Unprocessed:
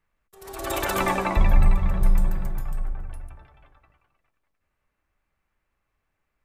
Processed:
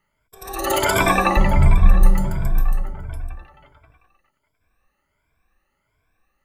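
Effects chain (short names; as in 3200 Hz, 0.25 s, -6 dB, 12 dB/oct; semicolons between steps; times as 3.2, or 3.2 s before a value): moving spectral ripple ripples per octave 1.7, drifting +1.4 Hz, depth 17 dB; gain +4.5 dB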